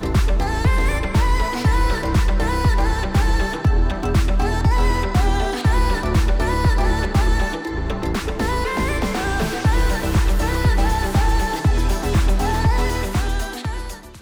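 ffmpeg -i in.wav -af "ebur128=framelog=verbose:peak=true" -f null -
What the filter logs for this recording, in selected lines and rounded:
Integrated loudness:
  I:         -20.3 LUFS
  Threshold: -30.4 LUFS
Loudness range:
  LRA:         1.9 LU
  Threshold: -40.2 LUFS
  LRA low:   -21.5 LUFS
  LRA high:  -19.6 LUFS
True peak:
  Peak:       -6.9 dBFS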